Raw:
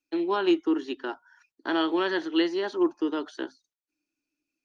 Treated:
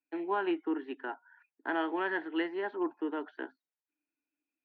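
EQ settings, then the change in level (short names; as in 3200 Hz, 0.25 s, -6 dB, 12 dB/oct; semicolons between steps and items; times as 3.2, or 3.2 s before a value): speaker cabinet 320–2100 Hz, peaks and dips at 350 Hz -7 dB, 550 Hz -8 dB, 1200 Hz -9 dB; 0.0 dB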